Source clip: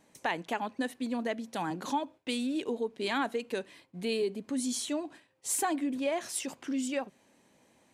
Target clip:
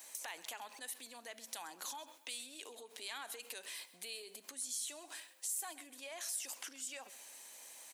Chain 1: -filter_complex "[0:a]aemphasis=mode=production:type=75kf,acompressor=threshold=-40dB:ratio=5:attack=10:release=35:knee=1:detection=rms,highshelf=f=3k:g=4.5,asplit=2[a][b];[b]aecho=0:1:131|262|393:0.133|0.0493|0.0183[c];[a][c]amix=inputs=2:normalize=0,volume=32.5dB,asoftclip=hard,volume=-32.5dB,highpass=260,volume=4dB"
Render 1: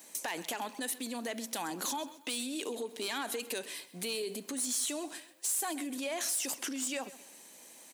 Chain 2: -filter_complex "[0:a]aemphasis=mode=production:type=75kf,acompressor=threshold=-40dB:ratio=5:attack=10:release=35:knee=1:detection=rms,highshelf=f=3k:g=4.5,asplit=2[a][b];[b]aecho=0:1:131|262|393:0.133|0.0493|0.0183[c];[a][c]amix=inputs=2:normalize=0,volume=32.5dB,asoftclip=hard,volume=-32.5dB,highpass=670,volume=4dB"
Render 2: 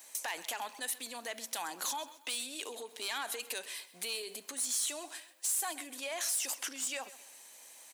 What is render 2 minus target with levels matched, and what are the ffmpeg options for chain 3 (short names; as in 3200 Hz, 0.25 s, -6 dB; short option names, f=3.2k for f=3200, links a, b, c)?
compressor: peak gain reduction -9 dB
-filter_complex "[0:a]aemphasis=mode=production:type=75kf,acompressor=threshold=-51.5dB:ratio=5:attack=10:release=35:knee=1:detection=rms,highshelf=f=3k:g=4.5,asplit=2[a][b];[b]aecho=0:1:131|262|393:0.133|0.0493|0.0183[c];[a][c]amix=inputs=2:normalize=0,volume=32.5dB,asoftclip=hard,volume=-32.5dB,highpass=670,volume=4dB"